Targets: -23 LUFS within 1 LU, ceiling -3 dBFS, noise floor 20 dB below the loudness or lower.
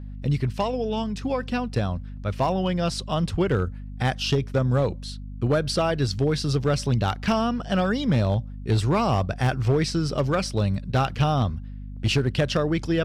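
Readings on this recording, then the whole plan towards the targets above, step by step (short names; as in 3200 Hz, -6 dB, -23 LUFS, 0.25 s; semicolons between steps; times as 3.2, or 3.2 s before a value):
clipped 1.2%; flat tops at -15.0 dBFS; hum 50 Hz; harmonics up to 250 Hz; hum level -33 dBFS; loudness -24.5 LUFS; peak -15.0 dBFS; loudness target -23.0 LUFS
-> clip repair -15 dBFS; de-hum 50 Hz, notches 5; gain +1.5 dB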